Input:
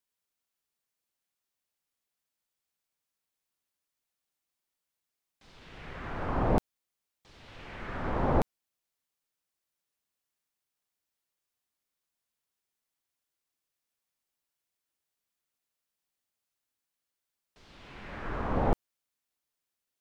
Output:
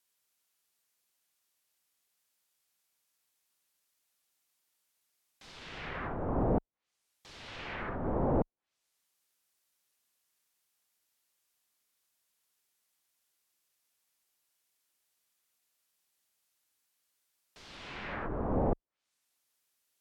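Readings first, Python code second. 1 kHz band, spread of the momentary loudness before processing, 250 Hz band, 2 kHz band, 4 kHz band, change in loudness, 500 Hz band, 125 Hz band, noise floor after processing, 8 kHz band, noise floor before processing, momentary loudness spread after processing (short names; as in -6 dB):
-4.0 dB, 20 LU, -0.5 dB, -1.0 dB, +3.0 dB, -2.5 dB, -0.5 dB, -2.0 dB, -83 dBFS, n/a, under -85 dBFS, 18 LU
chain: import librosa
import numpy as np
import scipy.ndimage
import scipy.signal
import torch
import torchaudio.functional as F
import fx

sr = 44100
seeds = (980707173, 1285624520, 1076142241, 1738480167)

y = fx.tilt_eq(x, sr, slope=1.5)
y = np.clip(y, -10.0 ** (-27.0 / 20.0), 10.0 ** (-27.0 / 20.0))
y = fx.env_lowpass_down(y, sr, base_hz=590.0, full_db=-35.5)
y = y * 10.0 ** (5.0 / 20.0)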